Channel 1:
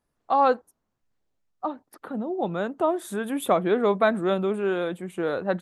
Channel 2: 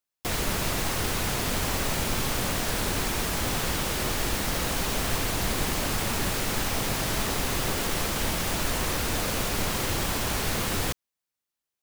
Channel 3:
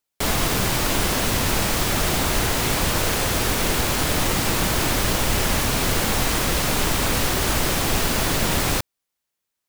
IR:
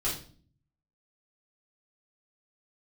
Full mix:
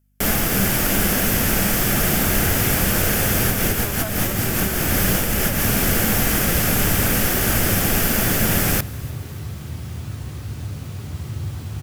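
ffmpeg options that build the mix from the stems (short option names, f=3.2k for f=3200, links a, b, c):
-filter_complex "[0:a]aeval=exprs='val(0)+0.0112*(sin(2*PI*50*n/s)+sin(2*PI*2*50*n/s)/2+sin(2*PI*3*50*n/s)/3+sin(2*PI*4*50*n/s)/4+sin(2*PI*5*50*n/s)/5)':c=same,volume=-12dB,afade=t=in:st=3.33:d=0.77:silence=0.298538,asplit=2[a][b];[1:a]highpass=f=70:w=0.5412,highpass=f=70:w=1.3066,equalizer=f=100:t=o:w=0.9:g=15,acrossover=split=260[c][d];[d]acompressor=threshold=-44dB:ratio=2[e];[c][e]amix=inputs=2:normalize=0,adelay=1450,volume=-8dB,asplit=2[f][g];[g]volume=-9dB[h];[2:a]equalizer=f=200:t=o:w=0.33:g=8,equalizer=f=1k:t=o:w=0.33:g=-9,equalizer=f=1.6k:t=o:w=0.33:g=4,equalizer=f=4k:t=o:w=0.33:g=-9,equalizer=f=12.5k:t=o:w=0.33:g=11,volume=1dB,asplit=2[i][j];[j]volume=-22.5dB[k];[b]apad=whole_len=427140[l];[i][l]sidechaincompress=threshold=-38dB:ratio=8:attack=35:release=163[m];[3:a]atrim=start_sample=2205[n];[h][n]afir=irnorm=-1:irlink=0[o];[k]aecho=0:1:296|592|888|1184|1480|1776|2072|2368:1|0.56|0.314|0.176|0.0983|0.0551|0.0308|0.0173[p];[a][f][m][o][p]amix=inputs=5:normalize=0"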